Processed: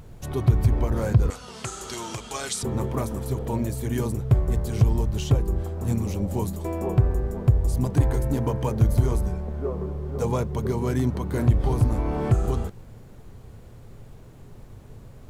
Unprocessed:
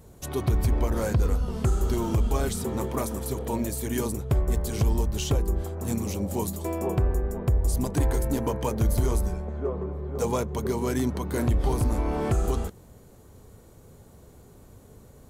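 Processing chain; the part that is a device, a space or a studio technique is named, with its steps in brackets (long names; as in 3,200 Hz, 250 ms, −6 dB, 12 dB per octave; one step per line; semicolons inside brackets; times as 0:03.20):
car interior (parametric band 120 Hz +9 dB 0.73 octaves; high-shelf EQ 4,300 Hz −7 dB; brown noise bed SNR 22 dB)
0:01.30–0:02.63: meter weighting curve ITU-R 468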